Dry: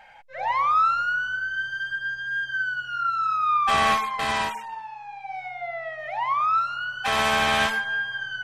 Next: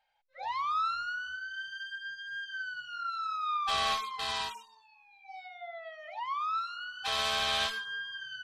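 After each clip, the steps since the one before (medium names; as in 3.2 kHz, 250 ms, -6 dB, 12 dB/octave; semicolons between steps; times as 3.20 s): spectral noise reduction 17 dB; graphic EQ 125/250/2000/4000 Hz -5/-9/-6/+11 dB; trim -9 dB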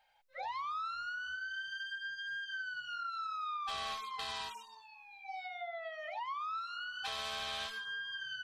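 compression 4:1, threshold -45 dBFS, peak gain reduction 15.5 dB; trim +5 dB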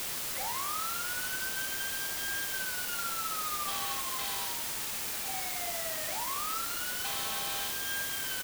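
multi-tap echo 45/242 ms -6.5/-19 dB; word length cut 6-bit, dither triangular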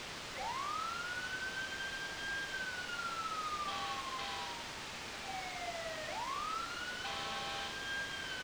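distance through air 140 m; trim -1.5 dB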